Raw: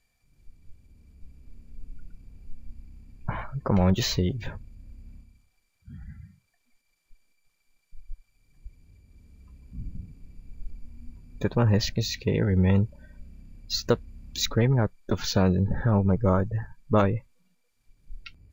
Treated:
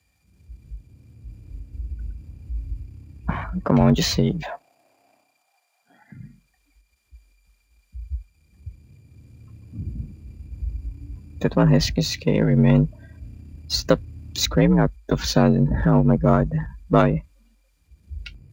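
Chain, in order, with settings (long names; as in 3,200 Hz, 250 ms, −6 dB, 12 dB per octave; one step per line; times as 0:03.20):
gain on one half-wave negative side −3 dB
0:04.42–0:06.12: high-pass with resonance 670 Hz, resonance Q 7.9
frequency shifter +46 Hz
level +6 dB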